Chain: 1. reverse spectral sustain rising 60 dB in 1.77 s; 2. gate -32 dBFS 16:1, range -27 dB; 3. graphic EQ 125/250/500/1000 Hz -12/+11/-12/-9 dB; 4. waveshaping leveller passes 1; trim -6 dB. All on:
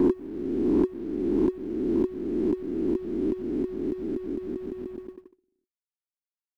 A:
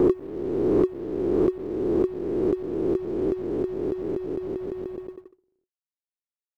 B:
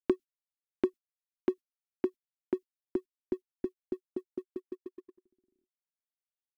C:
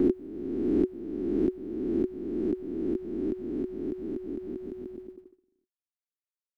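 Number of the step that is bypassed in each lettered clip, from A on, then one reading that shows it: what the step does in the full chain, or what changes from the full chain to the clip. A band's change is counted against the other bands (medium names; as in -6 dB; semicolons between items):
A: 3, 250 Hz band -5.0 dB; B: 1, 125 Hz band -9.0 dB; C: 4, crest factor change +3.0 dB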